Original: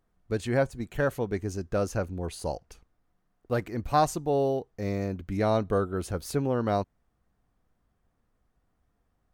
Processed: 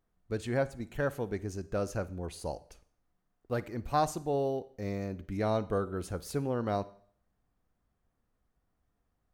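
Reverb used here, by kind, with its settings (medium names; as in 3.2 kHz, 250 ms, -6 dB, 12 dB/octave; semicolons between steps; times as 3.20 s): Schroeder reverb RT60 0.55 s, DRR 17 dB; trim -5 dB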